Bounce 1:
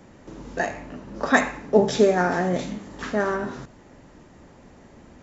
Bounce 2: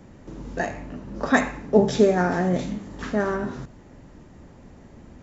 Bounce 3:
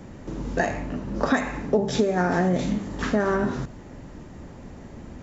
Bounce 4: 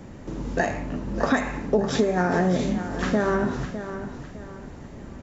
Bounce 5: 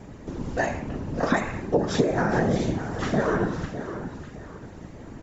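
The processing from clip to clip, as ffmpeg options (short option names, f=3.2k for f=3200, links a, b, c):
-af "lowshelf=f=250:g=8.5,volume=-2.5dB"
-af "acompressor=threshold=-23dB:ratio=16,volume=5.5dB"
-af "aecho=1:1:606|1212|1818|2424:0.282|0.0958|0.0326|0.0111"
-af "afftfilt=real='hypot(re,im)*cos(2*PI*random(0))':imag='hypot(re,im)*sin(2*PI*random(1))':win_size=512:overlap=0.75,volume=5dB"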